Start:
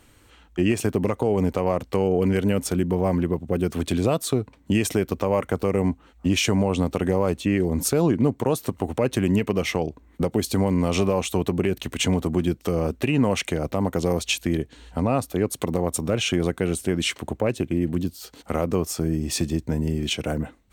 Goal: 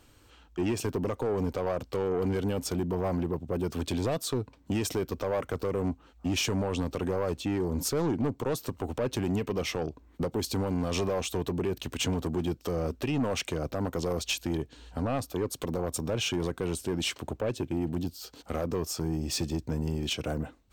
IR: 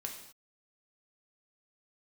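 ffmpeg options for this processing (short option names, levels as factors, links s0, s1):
-af "equalizer=f=200:t=o:w=0.33:g=-4,equalizer=f=2000:t=o:w=0.33:g=-6,equalizer=f=5000:t=o:w=0.33:g=4,equalizer=f=10000:t=o:w=0.33:g=-7,asoftclip=type=tanh:threshold=0.112,volume=0.668"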